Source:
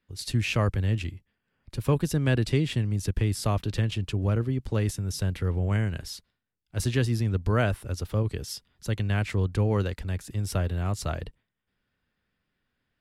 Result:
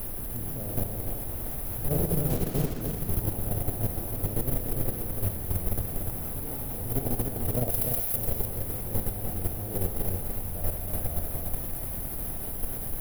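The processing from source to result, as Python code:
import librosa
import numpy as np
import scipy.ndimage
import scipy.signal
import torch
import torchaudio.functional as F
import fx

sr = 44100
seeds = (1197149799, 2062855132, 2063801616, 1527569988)

y = fx.spec_trails(x, sr, decay_s=1.94)
y = fx.comb_fb(y, sr, f0_hz=81.0, decay_s=2.0, harmonics='all', damping=0.0, mix_pct=80)
y = fx.quant_dither(y, sr, seeds[0], bits=6, dither='triangular')
y = fx.brickwall_bandstop(y, sr, low_hz=810.0, high_hz=9800.0)
y = fx.dmg_noise_colour(y, sr, seeds[1], colour='brown', level_db=-36.0)
y = fx.echo_pitch(y, sr, ms=233, semitones=2, count=3, db_per_echo=-6.0)
y = fx.level_steps(y, sr, step_db=10)
y = fx.backlash(y, sr, play_db=-37.5, at=(2.29, 2.81))
y = fx.tilt_shelf(y, sr, db=-8.5, hz=1100.0, at=(7.7, 8.16))
y = y + 10.0 ** (-5.5 / 20.0) * np.pad(y, (int(295 * sr / 1000.0), 0))[:len(y)]
y = y * 10.0 ** (6.0 / 20.0)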